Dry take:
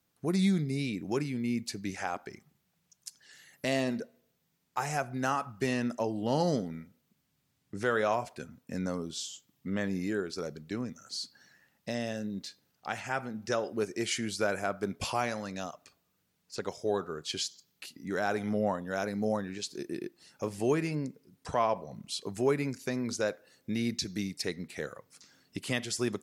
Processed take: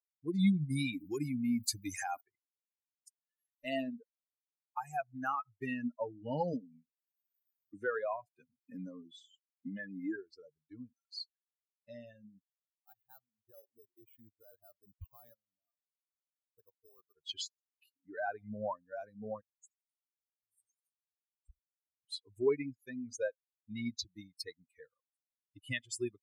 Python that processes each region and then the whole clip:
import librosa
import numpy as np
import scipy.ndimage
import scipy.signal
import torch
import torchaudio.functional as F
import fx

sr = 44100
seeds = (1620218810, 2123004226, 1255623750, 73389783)

y = fx.chain(x, sr, fx.high_shelf(hz=4800.0, db=11.0),
    fx.env_flatten(amount_pct=50), at=(0.7, 2.21))
y = fx.chain(y, sr, fx.highpass(hz=140.0, slope=12),
    fx.low_shelf(hz=420.0, db=3.0),
    fx.band_squash(depth_pct=70), at=(6.53, 10.16))
y = fx.chain(y, sr, fx.level_steps(step_db=12),
    fx.air_absorb(metres=490.0),
    fx.resample_bad(factor=8, down='none', up='hold'), at=(12.41, 17.17))
y = fx.chain(y, sr, fx.cheby2_bandstop(low_hz=210.0, high_hz=2400.0, order=4, stop_db=60),
    fx.echo_single(ms=75, db=-13.0), at=(19.41, 22.04))
y = fx.bin_expand(y, sr, power=3.0)
y = fx.notch(y, sr, hz=5600.0, q=7.9)
y = y * librosa.db_to_amplitude(1.0)